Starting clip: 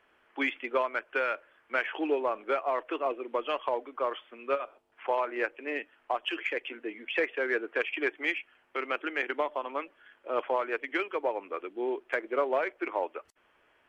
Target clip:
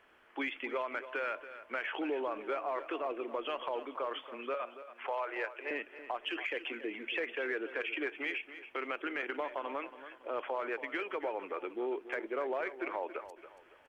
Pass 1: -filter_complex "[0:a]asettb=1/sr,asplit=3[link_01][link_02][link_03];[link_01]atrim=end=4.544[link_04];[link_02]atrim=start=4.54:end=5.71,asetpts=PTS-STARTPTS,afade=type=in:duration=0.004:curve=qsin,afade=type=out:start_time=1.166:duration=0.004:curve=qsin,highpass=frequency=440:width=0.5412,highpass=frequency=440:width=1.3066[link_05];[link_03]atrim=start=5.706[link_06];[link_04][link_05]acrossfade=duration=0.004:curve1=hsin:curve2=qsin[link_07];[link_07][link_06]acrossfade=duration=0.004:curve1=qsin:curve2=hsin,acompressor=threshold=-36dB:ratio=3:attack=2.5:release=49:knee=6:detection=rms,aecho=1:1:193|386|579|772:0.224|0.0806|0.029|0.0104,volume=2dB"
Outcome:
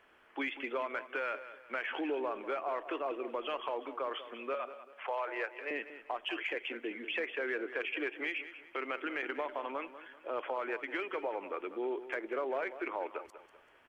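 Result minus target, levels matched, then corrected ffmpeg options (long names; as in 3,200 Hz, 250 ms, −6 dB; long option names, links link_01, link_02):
echo 87 ms early
-filter_complex "[0:a]asettb=1/sr,asplit=3[link_01][link_02][link_03];[link_01]atrim=end=4.544[link_04];[link_02]atrim=start=4.54:end=5.71,asetpts=PTS-STARTPTS,afade=type=in:duration=0.004:curve=qsin,afade=type=out:start_time=1.166:duration=0.004:curve=qsin,highpass=frequency=440:width=0.5412,highpass=frequency=440:width=1.3066[link_05];[link_03]atrim=start=5.706[link_06];[link_04][link_05]acrossfade=duration=0.004:curve1=hsin:curve2=qsin[link_07];[link_07][link_06]acrossfade=duration=0.004:curve1=qsin:curve2=hsin,acompressor=threshold=-36dB:ratio=3:attack=2.5:release=49:knee=6:detection=rms,aecho=1:1:280|560|840|1120:0.224|0.0806|0.029|0.0104,volume=2dB"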